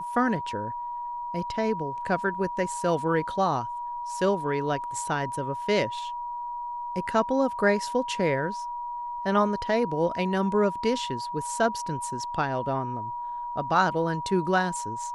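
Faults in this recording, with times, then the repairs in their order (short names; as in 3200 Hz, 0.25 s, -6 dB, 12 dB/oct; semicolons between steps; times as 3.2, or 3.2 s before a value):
tone 960 Hz -31 dBFS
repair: notch 960 Hz, Q 30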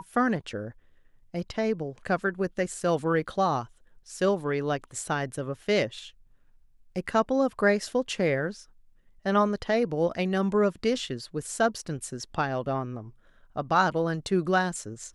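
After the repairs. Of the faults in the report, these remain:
none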